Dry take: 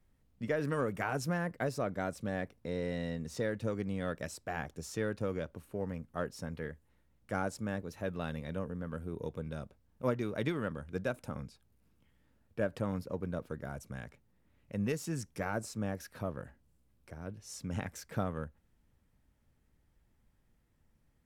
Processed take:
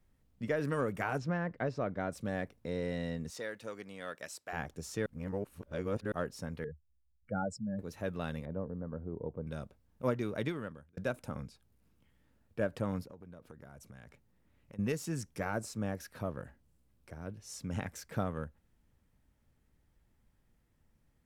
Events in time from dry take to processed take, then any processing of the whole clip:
0:01.18–0:02.12: high-frequency loss of the air 170 metres
0:03.30–0:04.53: high-pass filter 950 Hz 6 dB per octave
0:05.06–0:06.12: reverse
0:06.64–0:07.79: expanding power law on the bin magnitudes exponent 2.7
0:08.45–0:09.47: Chebyshev low-pass filter 760 Hz
0:10.35–0:10.97: fade out
0:13.02–0:14.79: downward compressor, threshold −48 dBFS

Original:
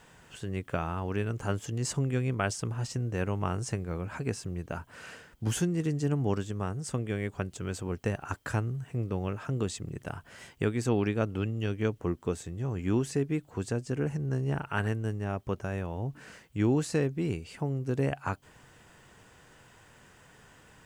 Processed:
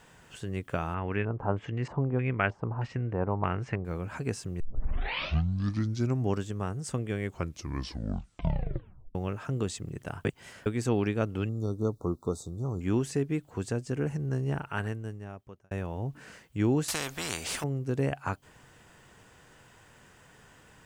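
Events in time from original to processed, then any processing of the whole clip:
0:00.94–0:03.85: auto-filter low-pass square 1.6 Hz 920–2,200 Hz
0:04.60: tape start 1.72 s
0:07.23: tape stop 1.92 s
0:10.25–0:10.66: reverse
0:11.49–0:12.81: linear-phase brick-wall band-stop 1,400–3,500 Hz
0:14.47–0:15.71: fade out
0:16.88–0:17.64: every bin compressed towards the loudest bin 4 to 1

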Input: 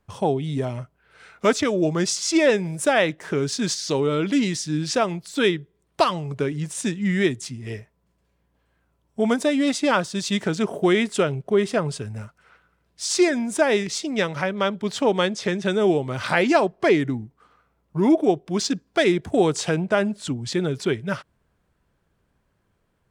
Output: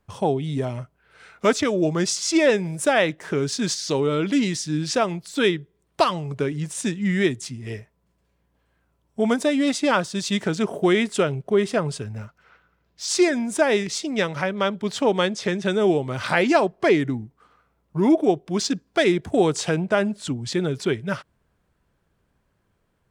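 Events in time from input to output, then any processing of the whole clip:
0:12.04–0:13.08: parametric band 9,100 Hz −15 dB 0.37 octaves

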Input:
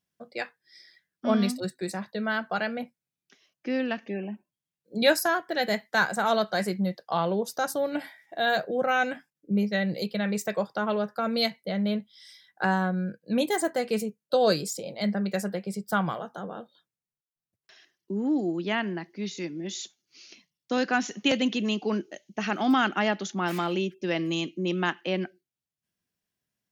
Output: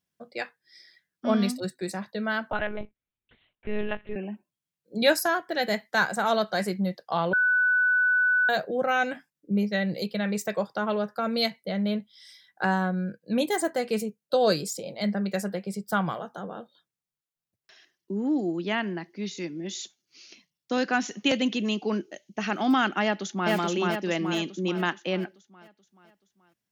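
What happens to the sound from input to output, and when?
0:02.51–0:04.16: one-pitch LPC vocoder at 8 kHz 210 Hz
0:07.33–0:08.49: beep over 1,490 Hz −19 dBFS
0:23.03–0:23.52: delay throw 430 ms, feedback 50%, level −0.5 dB

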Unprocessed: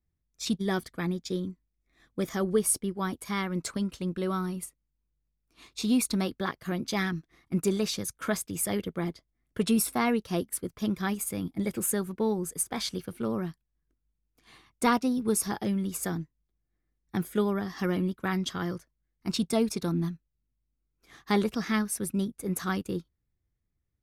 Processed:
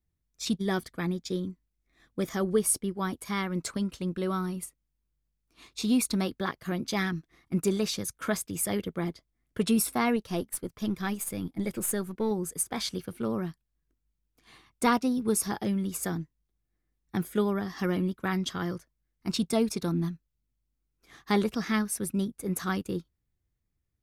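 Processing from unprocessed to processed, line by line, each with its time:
0:10.16–0:12.31: gain on one half-wave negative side −3 dB

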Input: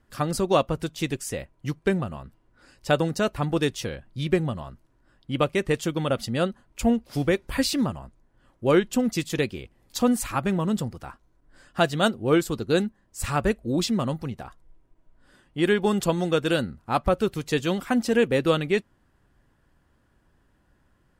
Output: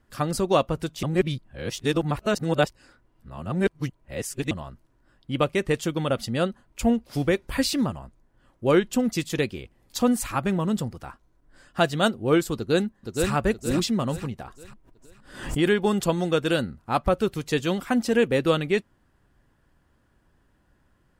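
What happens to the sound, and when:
0:01.03–0:04.51: reverse
0:12.56–0:13.32: delay throw 470 ms, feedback 40%, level −3.5 dB
0:14.44–0:15.71: background raised ahead of every attack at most 88 dB per second

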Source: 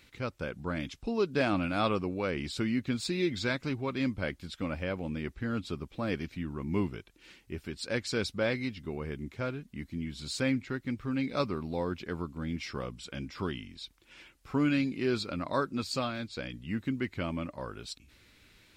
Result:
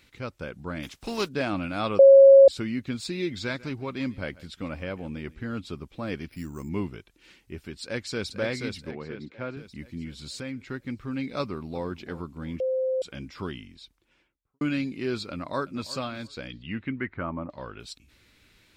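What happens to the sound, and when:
0:00.82–0:01.27: compressing power law on the bin magnitudes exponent 0.62
0:01.99–0:02.48: beep over 546 Hz −8.5 dBFS
0:03.34–0:05.56: single-tap delay 143 ms −20.5 dB
0:06.28–0:06.69: bad sample-rate conversion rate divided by 6×, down filtered, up hold
0:07.82–0:08.31: delay throw 480 ms, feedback 45%, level −4.5 dB
0:08.91–0:09.57: band-pass filter 140–3,000 Hz
0:10.27–0:10.67: downward compressor 2 to 1, threshold −36 dBFS
0:11.41–0:11.87: delay throw 340 ms, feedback 45%, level −15.5 dB
0:12.60–0:13.02: beep over 520 Hz −23 dBFS
0:13.53–0:14.61: fade out and dull
0:15.31–0:15.92: delay throw 350 ms, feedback 15%, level −16.5 dB
0:16.50–0:17.80: auto-filter low-pass saw down 1 Hz 840–4,200 Hz

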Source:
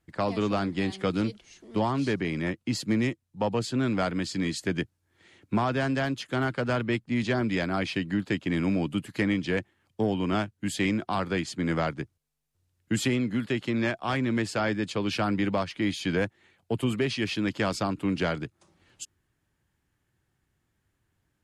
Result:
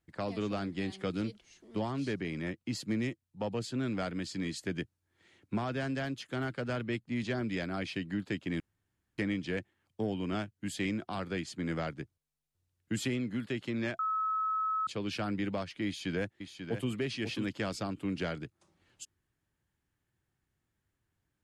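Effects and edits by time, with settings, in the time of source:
0:08.60–0:09.18: fill with room tone
0:13.99–0:14.87: beep over 1,290 Hz −19.5 dBFS
0:15.86–0:16.91: delay throw 540 ms, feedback 10%, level −8 dB
whole clip: dynamic equaliser 980 Hz, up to −5 dB, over −43 dBFS, Q 2; level −7 dB

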